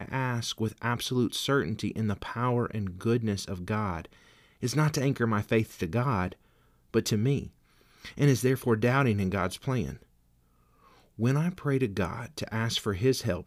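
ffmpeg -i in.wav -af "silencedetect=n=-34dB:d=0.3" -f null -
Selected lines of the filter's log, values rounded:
silence_start: 4.05
silence_end: 4.63 | silence_duration: 0.58
silence_start: 6.33
silence_end: 6.94 | silence_duration: 0.62
silence_start: 7.47
silence_end: 8.05 | silence_duration: 0.58
silence_start: 9.93
silence_end: 11.19 | silence_duration: 1.26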